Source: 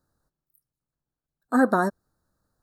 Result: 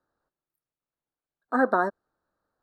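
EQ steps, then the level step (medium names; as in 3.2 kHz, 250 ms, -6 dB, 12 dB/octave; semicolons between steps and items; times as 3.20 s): three-band isolator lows -14 dB, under 300 Hz, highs -20 dB, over 3.6 kHz; 0.0 dB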